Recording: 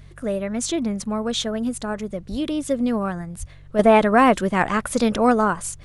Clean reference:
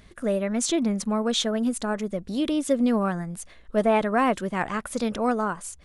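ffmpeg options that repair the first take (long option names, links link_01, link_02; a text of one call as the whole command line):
ffmpeg -i in.wav -filter_complex "[0:a]bandreject=frequency=47.4:width_type=h:width=4,bandreject=frequency=94.8:width_type=h:width=4,bandreject=frequency=142.2:width_type=h:width=4,asplit=3[link_01][link_02][link_03];[link_01]afade=type=out:start_time=2.3:duration=0.02[link_04];[link_02]highpass=frequency=140:width=0.5412,highpass=frequency=140:width=1.3066,afade=type=in:start_time=2.3:duration=0.02,afade=type=out:start_time=2.42:duration=0.02[link_05];[link_03]afade=type=in:start_time=2.42:duration=0.02[link_06];[link_04][link_05][link_06]amix=inputs=3:normalize=0,asplit=3[link_07][link_08][link_09];[link_07]afade=type=out:start_time=3.39:duration=0.02[link_10];[link_08]highpass=frequency=140:width=0.5412,highpass=frequency=140:width=1.3066,afade=type=in:start_time=3.39:duration=0.02,afade=type=out:start_time=3.51:duration=0.02[link_11];[link_09]afade=type=in:start_time=3.51:duration=0.02[link_12];[link_10][link_11][link_12]amix=inputs=3:normalize=0,agate=range=-21dB:threshold=-35dB,asetnsamples=nb_out_samples=441:pad=0,asendcmd='3.79 volume volume -7dB',volume=0dB" out.wav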